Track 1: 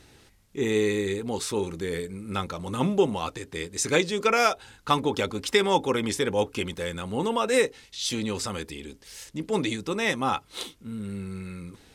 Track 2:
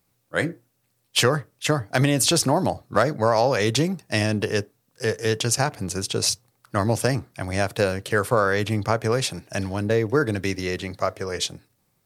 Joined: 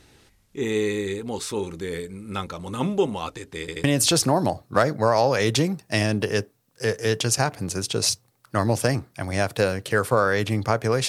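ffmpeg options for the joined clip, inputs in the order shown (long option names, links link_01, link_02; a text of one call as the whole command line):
ffmpeg -i cue0.wav -i cue1.wav -filter_complex "[0:a]apad=whole_dur=11.08,atrim=end=11.08,asplit=3[link_01][link_02][link_03];[link_01]atrim=end=3.682[link_04];[link_02]atrim=start=3.598:end=3.682[link_05];[link_03]atrim=start=3.598:end=3.682[link_06];[1:a]atrim=start=2.038:end=9.28[link_07];[link_04][link_05]acrossfade=duration=0.004:curve1=hsin:curve2=hsin[link_08];[link_08][link_06]acrossfade=duration=0.004:curve1=hsin:curve2=hsin[link_09];[link_09][link_07]acrossfade=duration=0.004:curve1=hsin:curve2=hsin" out.wav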